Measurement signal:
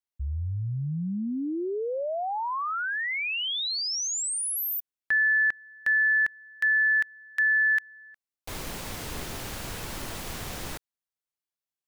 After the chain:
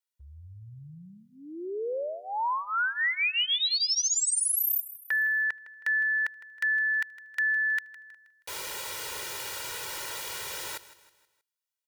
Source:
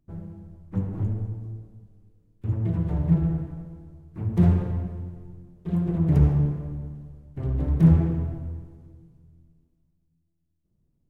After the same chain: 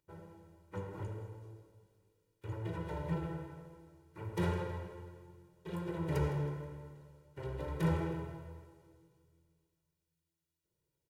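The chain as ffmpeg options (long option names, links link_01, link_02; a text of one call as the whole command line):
ffmpeg -i in.wav -filter_complex "[0:a]highpass=frequency=1000:poles=1,aecho=1:1:2.1:0.97,asplit=2[link_01][link_02];[link_02]aecho=0:1:159|318|477|636:0.15|0.0658|0.029|0.0127[link_03];[link_01][link_03]amix=inputs=2:normalize=0" out.wav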